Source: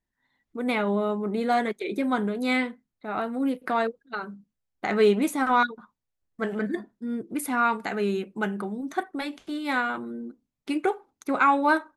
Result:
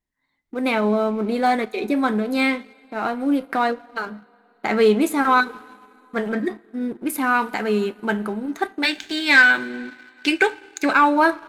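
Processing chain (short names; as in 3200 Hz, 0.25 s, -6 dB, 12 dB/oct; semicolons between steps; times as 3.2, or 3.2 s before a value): two-slope reverb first 0.23 s, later 3.4 s, from -18 dB, DRR 13.5 dB; spectral gain 9.2–11.38, 1400–8200 Hz +12 dB; speed mistake 24 fps film run at 25 fps; sample leveller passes 1; gain +1 dB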